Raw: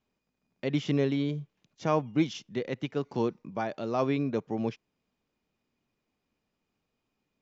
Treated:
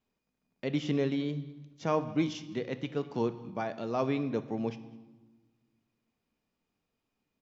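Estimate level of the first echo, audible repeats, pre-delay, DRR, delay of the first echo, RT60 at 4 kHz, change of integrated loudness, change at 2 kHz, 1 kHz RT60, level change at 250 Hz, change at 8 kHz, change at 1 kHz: -23.0 dB, 1, 4 ms, 10.5 dB, 204 ms, 1.0 s, -2.0 dB, -2.0 dB, 1.2 s, -2.0 dB, no reading, -2.5 dB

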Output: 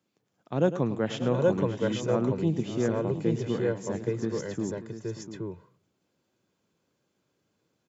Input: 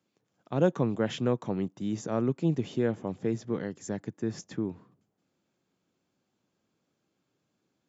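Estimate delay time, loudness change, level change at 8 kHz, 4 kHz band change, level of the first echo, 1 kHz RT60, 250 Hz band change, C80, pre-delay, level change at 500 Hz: 105 ms, +2.0 dB, no reading, +3.0 dB, -12.5 dB, no reverb, +1.5 dB, no reverb, no reverb, +4.0 dB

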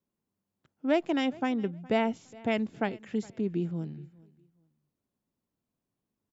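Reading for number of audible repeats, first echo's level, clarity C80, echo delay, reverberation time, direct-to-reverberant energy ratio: 1, -23.0 dB, no reverb, 414 ms, no reverb, no reverb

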